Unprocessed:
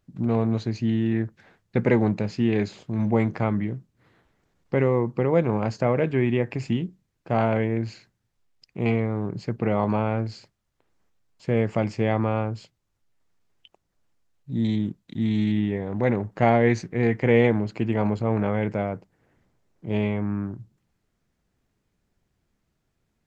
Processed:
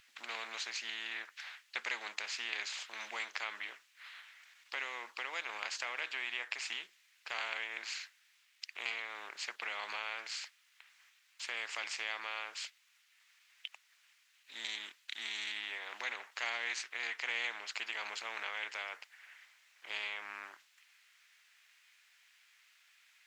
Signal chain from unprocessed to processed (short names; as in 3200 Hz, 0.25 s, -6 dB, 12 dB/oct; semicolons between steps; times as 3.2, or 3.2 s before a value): ladder high-pass 1800 Hz, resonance 30%; high shelf 3000 Hz -11.5 dB; in parallel at +1.5 dB: compressor, threshold -54 dBFS, peak gain reduction 17.5 dB; on the sum: spectral compressor 2:1; gain +7.5 dB